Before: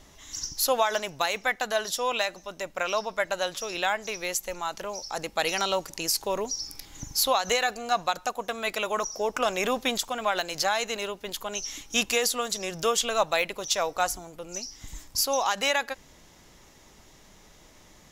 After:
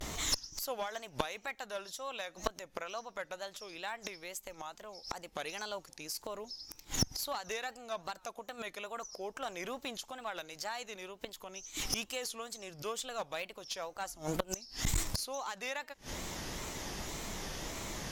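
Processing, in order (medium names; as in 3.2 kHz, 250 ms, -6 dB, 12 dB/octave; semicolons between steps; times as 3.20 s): inverted gate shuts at -27 dBFS, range -27 dB; wow and flutter 150 cents; one-sided clip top -46 dBFS, bottom -26 dBFS; trim +13 dB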